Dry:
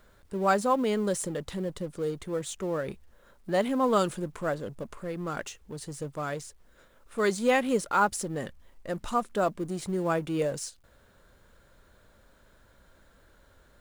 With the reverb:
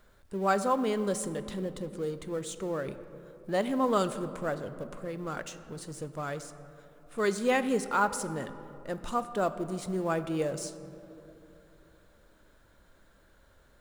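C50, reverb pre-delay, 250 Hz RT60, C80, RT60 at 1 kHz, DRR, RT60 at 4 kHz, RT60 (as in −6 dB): 12.5 dB, 3 ms, 4.0 s, 13.5 dB, 2.6 s, 11.5 dB, 1.3 s, 2.9 s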